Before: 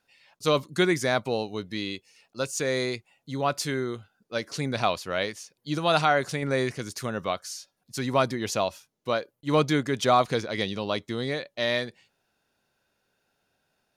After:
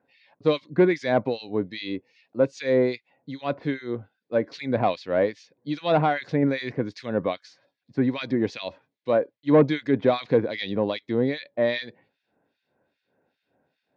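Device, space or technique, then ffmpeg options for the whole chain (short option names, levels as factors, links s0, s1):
guitar amplifier with harmonic tremolo: -filter_complex "[0:a]acrossover=split=1800[s0][s1];[s0]aeval=exprs='val(0)*(1-1/2+1/2*cos(2*PI*2.5*n/s))':c=same[s2];[s1]aeval=exprs='val(0)*(1-1/2-1/2*cos(2*PI*2.5*n/s))':c=same[s3];[s2][s3]amix=inputs=2:normalize=0,asoftclip=type=tanh:threshold=0.119,highpass=98,equalizer=f=280:t=q:w=4:g=7,equalizer=f=510:t=q:w=4:g=5,equalizer=f=1300:t=q:w=4:g=-9,equalizer=f=2900:t=q:w=4:g=-8,lowpass=f=3600:w=0.5412,lowpass=f=3600:w=1.3066,volume=2.24"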